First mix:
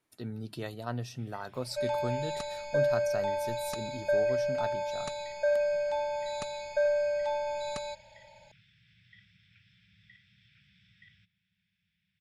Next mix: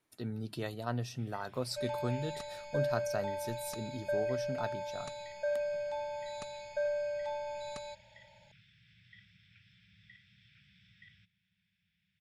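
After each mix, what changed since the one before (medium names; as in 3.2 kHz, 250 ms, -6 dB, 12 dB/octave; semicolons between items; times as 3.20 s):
second sound -6.5 dB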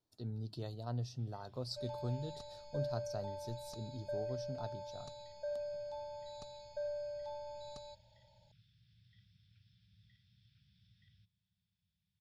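master: add FFT filter 110 Hz 0 dB, 180 Hz -7 dB, 830 Hz -7 dB, 2.2 kHz -21 dB, 4.5 kHz -2 dB, 10 kHz -16 dB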